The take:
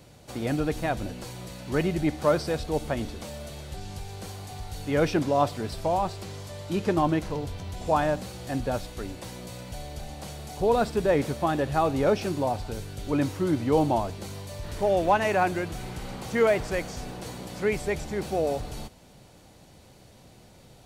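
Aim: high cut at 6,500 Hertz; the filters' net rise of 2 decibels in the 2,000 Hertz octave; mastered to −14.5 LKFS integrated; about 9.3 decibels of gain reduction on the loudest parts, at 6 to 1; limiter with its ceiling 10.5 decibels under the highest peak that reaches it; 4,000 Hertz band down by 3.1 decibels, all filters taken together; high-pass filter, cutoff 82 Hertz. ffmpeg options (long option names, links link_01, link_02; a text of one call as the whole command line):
ffmpeg -i in.wav -af "highpass=82,lowpass=6500,equalizer=frequency=2000:width_type=o:gain=3.5,equalizer=frequency=4000:width_type=o:gain=-4.5,acompressor=threshold=-27dB:ratio=6,volume=23dB,alimiter=limit=-3.5dB:level=0:latency=1" out.wav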